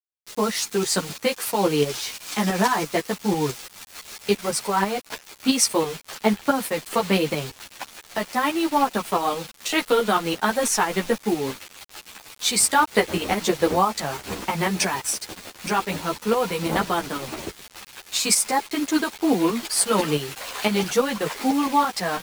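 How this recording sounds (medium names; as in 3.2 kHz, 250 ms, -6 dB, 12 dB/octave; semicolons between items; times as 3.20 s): tremolo saw up 6 Hz, depth 60%; a quantiser's noise floor 6-bit, dither none; a shimmering, thickened sound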